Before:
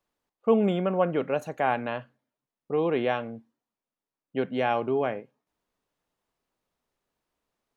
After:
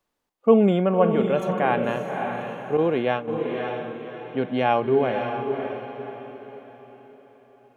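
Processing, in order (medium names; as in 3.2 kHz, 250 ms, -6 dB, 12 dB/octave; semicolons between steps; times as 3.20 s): echo that smears into a reverb 567 ms, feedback 40%, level -6 dB; 2.77–3.28 s: expander -23 dBFS; harmonic-percussive split percussive -6 dB; trim +6 dB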